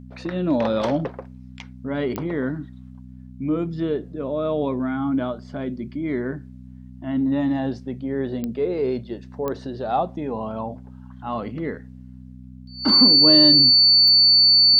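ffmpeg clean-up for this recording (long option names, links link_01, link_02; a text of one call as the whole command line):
ffmpeg -i in.wav -af "adeclick=threshold=4,bandreject=frequency=63.1:width_type=h:width=4,bandreject=frequency=126.2:width_type=h:width=4,bandreject=frequency=189.3:width_type=h:width=4,bandreject=frequency=252.4:width_type=h:width=4,bandreject=frequency=4500:width=30" out.wav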